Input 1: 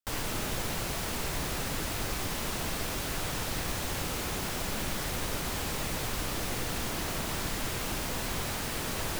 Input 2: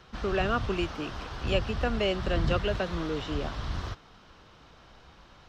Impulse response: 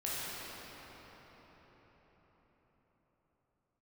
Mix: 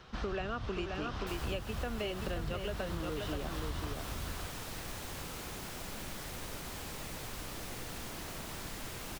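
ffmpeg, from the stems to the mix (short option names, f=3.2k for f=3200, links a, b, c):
-filter_complex "[0:a]adelay=1200,volume=-9.5dB[a];[1:a]volume=-0.5dB,asplit=2[b][c];[c]volume=-7dB,aecho=0:1:527:1[d];[a][b][d]amix=inputs=3:normalize=0,acompressor=threshold=-33dB:ratio=10"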